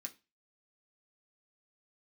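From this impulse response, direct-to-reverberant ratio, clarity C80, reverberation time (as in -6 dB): 1.5 dB, 25.0 dB, 0.25 s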